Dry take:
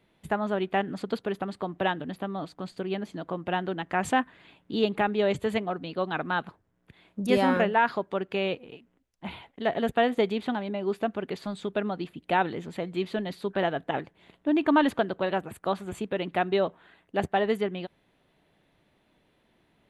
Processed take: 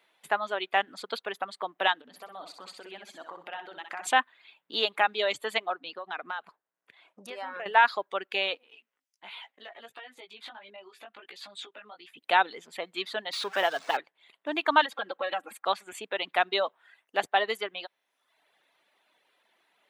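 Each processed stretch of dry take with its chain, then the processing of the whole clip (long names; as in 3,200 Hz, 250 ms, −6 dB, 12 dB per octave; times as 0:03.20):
0:02.01–0:04.07: downward compressor, threshold −36 dBFS + repeating echo 63 ms, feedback 54%, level −4 dB
0:05.74–0:07.66: high-shelf EQ 4,700 Hz −9 dB + downward compressor 12 to 1, threshold −31 dBFS
0:08.63–0:12.17: parametric band 3,100 Hz +5.5 dB 2 octaves + downward compressor 10 to 1, threshold −38 dBFS + chorus effect 1.4 Hz, delay 15 ms, depth 3.9 ms
0:13.33–0:13.97: converter with a step at zero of −34.5 dBFS + linearly interpolated sample-rate reduction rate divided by 3×
0:14.85–0:15.65: high-shelf EQ 4,700 Hz −5.5 dB + comb filter 3.7 ms, depth 96% + downward compressor 8 to 1, threshold −25 dBFS
whole clip: high-pass filter 780 Hz 12 dB per octave; reverb reduction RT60 0.87 s; dynamic equaliser 3,800 Hz, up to +6 dB, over −51 dBFS, Q 2.1; level +4.5 dB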